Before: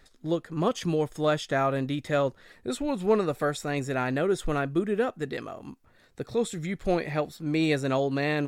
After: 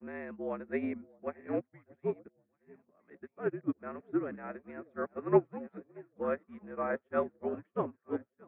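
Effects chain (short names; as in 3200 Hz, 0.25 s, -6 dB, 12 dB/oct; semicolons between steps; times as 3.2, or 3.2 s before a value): whole clip reversed; echo with dull and thin repeats by turns 0.629 s, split 820 Hz, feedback 72%, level -9.5 dB; mistuned SSB -58 Hz 220–2200 Hz; upward expander 2.5:1, over -44 dBFS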